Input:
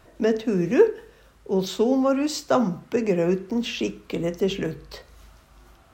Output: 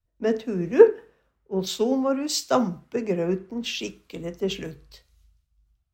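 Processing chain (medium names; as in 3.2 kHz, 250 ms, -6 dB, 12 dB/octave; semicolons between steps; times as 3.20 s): three bands expanded up and down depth 100%; trim -3.5 dB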